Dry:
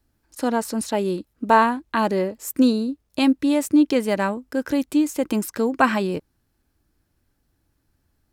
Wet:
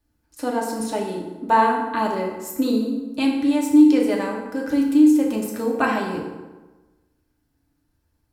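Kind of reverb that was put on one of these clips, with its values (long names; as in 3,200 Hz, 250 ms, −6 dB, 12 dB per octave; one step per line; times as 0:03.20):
feedback delay network reverb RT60 1.2 s, low-frequency decay 1.05×, high-frequency decay 0.65×, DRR −1.5 dB
level −5.5 dB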